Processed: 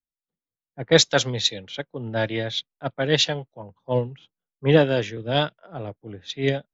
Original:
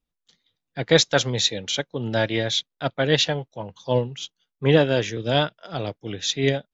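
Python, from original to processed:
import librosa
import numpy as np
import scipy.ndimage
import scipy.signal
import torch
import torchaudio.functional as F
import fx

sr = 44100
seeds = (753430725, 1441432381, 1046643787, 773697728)

y = fx.env_lowpass(x, sr, base_hz=740.0, full_db=-14.5)
y = fx.band_widen(y, sr, depth_pct=40)
y = y * 10.0 ** (-1.5 / 20.0)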